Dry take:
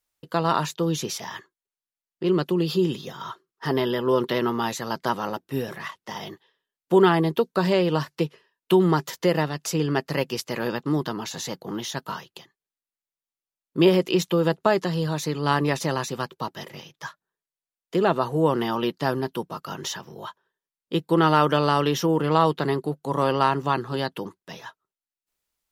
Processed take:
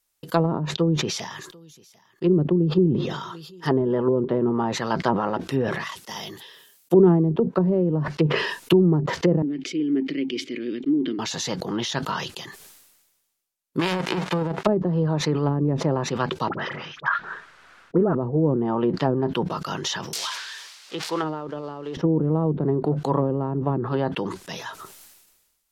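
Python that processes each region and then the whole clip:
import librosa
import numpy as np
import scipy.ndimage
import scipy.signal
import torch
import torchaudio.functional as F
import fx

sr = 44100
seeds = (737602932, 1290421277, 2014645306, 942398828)

y = fx.chain(x, sr, fx.low_shelf(hz=330.0, db=3.5),
    fx.echo_single(ms=744, db=-23.5),
    fx.upward_expand(threshold_db=-29.0, expansion=1.5), at=(0.57, 3.68))
y = fx.chain(y, sr, fx.highpass(hz=53.0, slope=12),
    fx.high_shelf(hz=9900.0, db=6.0),
    fx.band_widen(depth_pct=40), at=(5.84, 8.08))
y = fx.chain(y, sr, fx.vowel_filter(vowel='i'),
    fx.peak_eq(hz=370.0, db=12.5, octaves=0.62), at=(9.42, 11.19))
y = fx.envelope_flatten(y, sr, power=0.3, at=(13.79, 14.65), fade=0.02)
y = fx.highpass(y, sr, hz=290.0, slope=6, at=(13.79, 14.65), fade=0.02)
y = fx.over_compress(y, sr, threshold_db=-23.0, ratio=-0.5, at=(13.79, 14.65), fade=0.02)
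y = fx.chain(y, sr, fx.lowpass(hz=2800.0, slope=12),
    fx.peak_eq(hz=1400.0, db=13.5, octaves=0.84),
    fx.dispersion(late='highs', ms=53.0, hz=1300.0), at=(16.49, 18.15))
y = fx.chain(y, sr, fx.crossing_spikes(level_db=-20.5),
    fx.highpass(hz=1400.0, slope=6),
    fx.peak_eq(hz=4800.0, db=11.0, octaves=1.6), at=(20.13, 21.97))
y = fx.env_lowpass_down(y, sr, base_hz=350.0, full_db=-18.5)
y = fx.high_shelf(y, sr, hz=5400.0, db=7.0)
y = fx.sustainer(y, sr, db_per_s=44.0)
y = y * librosa.db_to_amplitude(3.5)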